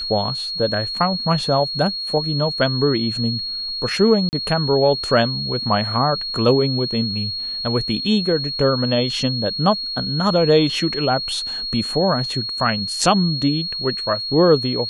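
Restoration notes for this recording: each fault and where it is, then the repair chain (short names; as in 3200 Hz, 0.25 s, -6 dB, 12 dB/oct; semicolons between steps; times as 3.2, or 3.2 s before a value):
tone 4300 Hz -24 dBFS
4.29–4.33 gap 39 ms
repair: notch 4300 Hz, Q 30; interpolate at 4.29, 39 ms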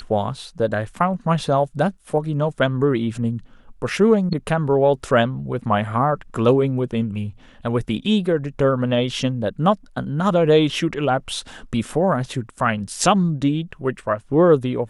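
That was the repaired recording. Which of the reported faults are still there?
none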